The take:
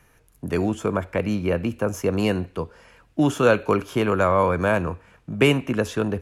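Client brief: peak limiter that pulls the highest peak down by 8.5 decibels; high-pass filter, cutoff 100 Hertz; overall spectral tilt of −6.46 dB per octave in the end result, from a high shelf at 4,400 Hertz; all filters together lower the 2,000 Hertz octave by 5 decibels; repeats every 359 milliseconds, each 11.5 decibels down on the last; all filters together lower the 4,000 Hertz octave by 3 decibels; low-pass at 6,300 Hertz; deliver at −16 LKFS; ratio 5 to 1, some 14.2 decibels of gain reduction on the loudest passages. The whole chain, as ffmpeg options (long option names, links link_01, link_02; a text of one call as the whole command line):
ffmpeg -i in.wav -af "highpass=100,lowpass=6300,equalizer=frequency=2000:width_type=o:gain=-8,equalizer=frequency=4000:width_type=o:gain=-3.5,highshelf=frequency=4400:gain=8,acompressor=threshold=-29dB:ratio=5,alimiter=level_in=2dB:limit=-24dB:level=0:latency=1,volume=-2dB,aecho=1:1:359|718|1077:0.266|0.0718|0.0194,volume=20.5dB" out.wav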